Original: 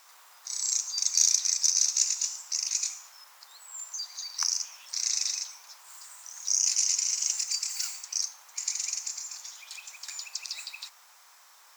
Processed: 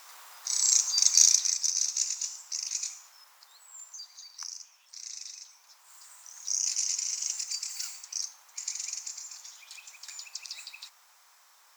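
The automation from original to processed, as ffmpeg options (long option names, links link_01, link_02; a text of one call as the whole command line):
ffmpeg -i in.wav -af "volume=14dB,afade=type=out:start_time=1.04:duration=0.59:silence=0.354813,afade=type=out:start_time=3.32:duration=1.22:silence=0.354813,afade=type=in:start_time=5.37:duration=0.75:silence=0.354813" out.wav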